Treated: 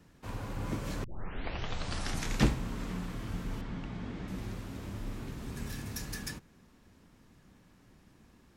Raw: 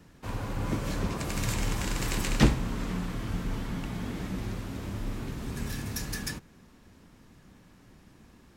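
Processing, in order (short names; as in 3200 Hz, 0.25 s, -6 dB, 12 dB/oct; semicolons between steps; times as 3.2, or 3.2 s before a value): 1.04 tape start 1.42 s; 3.61–4.28 air absorption 110 m; gain -5 dB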